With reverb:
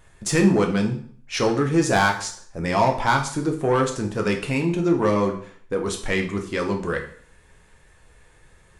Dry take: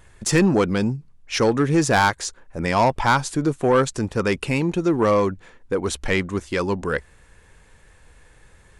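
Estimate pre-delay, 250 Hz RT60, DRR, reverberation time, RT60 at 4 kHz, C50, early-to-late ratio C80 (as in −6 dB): 4 ms, 0.55 s, 2.0 dB, 0.50 s, 0.50 s, 9.0 dB, 13.5 dB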